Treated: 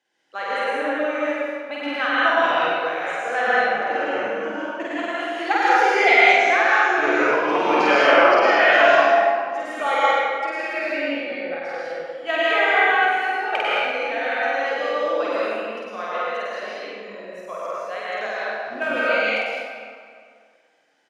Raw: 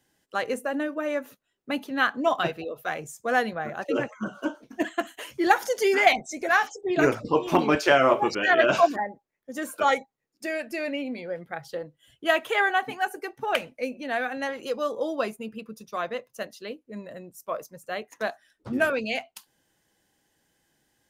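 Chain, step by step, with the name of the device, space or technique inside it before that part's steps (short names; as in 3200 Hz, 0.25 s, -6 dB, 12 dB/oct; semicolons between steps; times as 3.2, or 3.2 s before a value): station announcement (BPF 440–4800 Hz; bell 2300 Hz +5 dB 0.24 oct; loudspeakers at several distances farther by 17 m -1 dB, 33 m -4 dB; reverb RT60 2.1 s, pre-delay 0.102 s, DRR -6.5 dB); gain -3.5 dB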